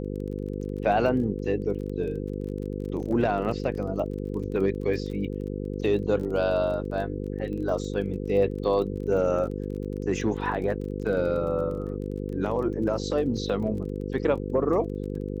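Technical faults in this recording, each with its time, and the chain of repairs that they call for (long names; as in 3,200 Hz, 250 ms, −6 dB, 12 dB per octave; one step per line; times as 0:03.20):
mains buzz 50 Hz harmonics 10 −32 dBFS
surface crackle 24 per second −36 dBFS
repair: click removal
hum removal 50 Hz, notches 10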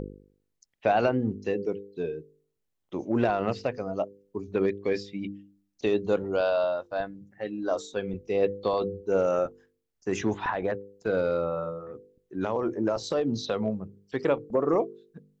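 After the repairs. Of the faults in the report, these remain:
none of them is left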